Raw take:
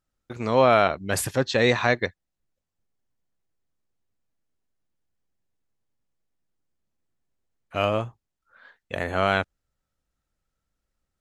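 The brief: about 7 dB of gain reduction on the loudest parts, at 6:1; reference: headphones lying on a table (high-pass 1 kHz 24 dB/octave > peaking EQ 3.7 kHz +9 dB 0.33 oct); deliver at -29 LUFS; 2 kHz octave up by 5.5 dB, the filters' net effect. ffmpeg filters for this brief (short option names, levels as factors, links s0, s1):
-af "equalizer=f=2000:t=o:g=6.5,acompressor=threshold=0.112:ratio=6,highpass=f=1000:w=0.5412,highpass=f=1000:w=1.3066,equalizer=f=3700:t=o:w=0.33:g=9,volume=0.841"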